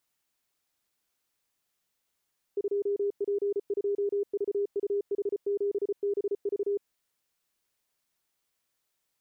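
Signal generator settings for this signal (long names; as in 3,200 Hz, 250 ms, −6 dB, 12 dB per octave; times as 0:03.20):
Morse code "2P2VUH7BV" 34 words per minute 404 Hz −25 dBFS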